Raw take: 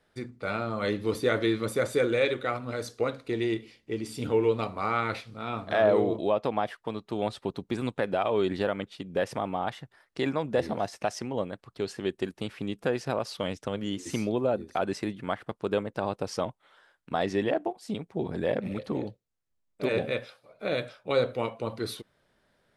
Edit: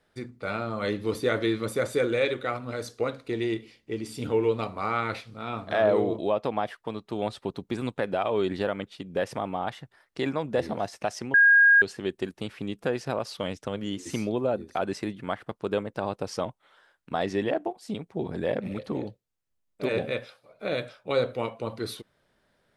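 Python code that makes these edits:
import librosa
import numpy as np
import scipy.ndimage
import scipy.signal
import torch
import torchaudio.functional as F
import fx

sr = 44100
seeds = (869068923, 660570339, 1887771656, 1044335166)

y = fx.edit(x, sr, fx.bleep(start_s=11.34, length_s=0.48, hz=1630.0, db=-13.5), tone=tone)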